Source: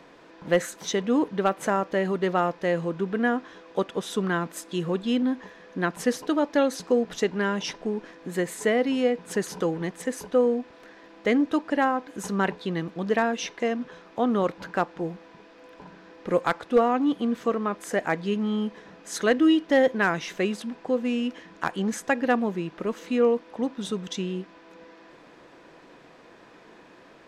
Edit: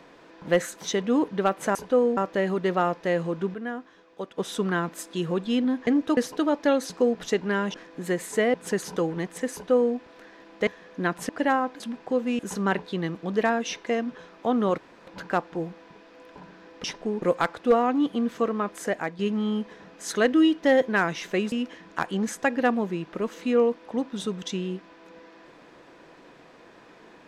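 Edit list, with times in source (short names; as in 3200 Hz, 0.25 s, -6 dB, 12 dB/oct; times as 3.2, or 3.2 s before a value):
3.12–3.96 gain -9 dB
5.45–6.07 swap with 11.31–11.61
7.64–8.02 move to 16.28
8.82–9.18 cut
10.17–10.59 copy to 1.75
14.51 insert room tone 0.29 s
17.88–18.25 fade out, to -9 dB
20.58–21.17 move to 12.12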